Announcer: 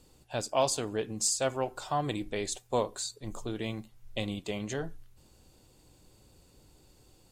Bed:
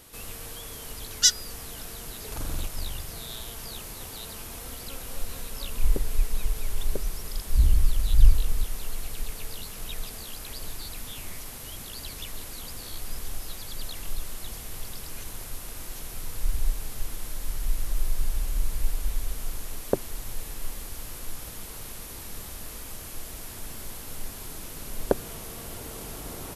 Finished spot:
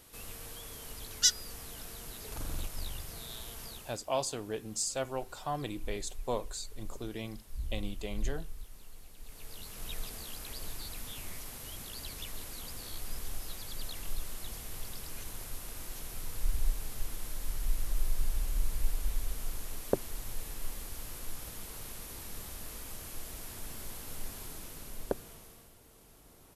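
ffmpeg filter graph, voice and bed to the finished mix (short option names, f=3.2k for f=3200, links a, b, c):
-filter_complex "[0:a]adelay=3550,volume=-5dB[a];[1:a]volume=8dB,afade=t=out:st=3.64:d=0.38:silence=0.237137,afade=t=in:st=9.19:d=0.73:silence=0.199526,afade=t=out:st=24.36:d=1.37:silence=0.158489[b];[a][b]amix=inputs=2:normalize=0"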